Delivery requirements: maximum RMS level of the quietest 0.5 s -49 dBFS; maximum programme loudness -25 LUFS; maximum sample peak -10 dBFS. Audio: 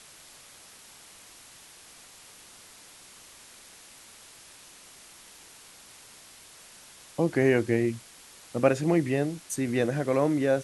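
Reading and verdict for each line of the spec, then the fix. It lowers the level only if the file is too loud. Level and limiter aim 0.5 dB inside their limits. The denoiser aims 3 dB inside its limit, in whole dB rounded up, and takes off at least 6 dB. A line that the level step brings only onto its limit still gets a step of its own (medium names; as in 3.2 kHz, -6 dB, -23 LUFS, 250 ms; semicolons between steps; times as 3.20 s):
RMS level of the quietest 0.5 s -51 dBFS: pass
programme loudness -26.5 LUFS: pass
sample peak -8.5 dBFS: fail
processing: peak limiter -10.5 dBFS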